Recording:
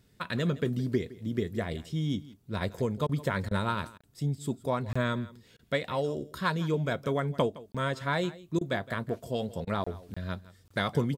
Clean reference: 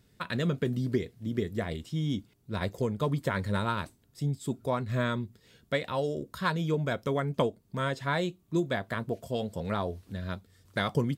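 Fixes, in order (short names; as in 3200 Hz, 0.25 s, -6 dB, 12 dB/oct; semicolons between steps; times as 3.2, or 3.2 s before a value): interpolate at 4.01/4.93/7.72/9.84/10.14/10.68, 25 ms; interpolate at 3.07/3.49/3.98/5.57/8.59/9.65, 20 ms; inverse comb 0.164 s -19 dB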